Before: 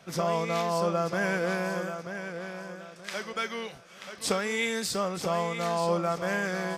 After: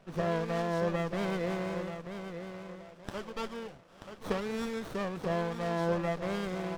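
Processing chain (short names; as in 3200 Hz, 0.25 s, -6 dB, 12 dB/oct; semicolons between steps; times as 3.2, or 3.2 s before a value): air absorption 91 m; running maximum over 17 samples; gain -3 dB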